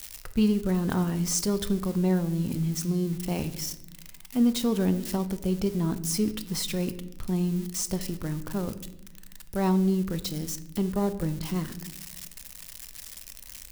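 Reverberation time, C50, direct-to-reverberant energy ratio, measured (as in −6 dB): 0.90 s, 14.0 dB, 11.0 dB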